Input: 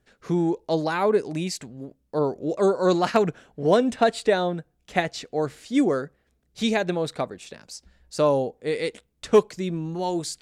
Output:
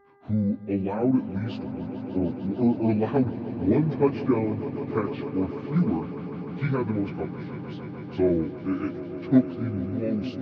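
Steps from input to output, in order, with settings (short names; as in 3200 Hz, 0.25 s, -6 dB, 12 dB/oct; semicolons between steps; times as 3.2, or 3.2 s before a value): pitch shift by moving bins -8.5 st; HPF 95 Hz; swelling echo 0.15 s, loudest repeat 5, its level -16 dB; buzz 400 Hz, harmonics 5, -57 dBFS -4 dB/oct; tape spacing loss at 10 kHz 31 dB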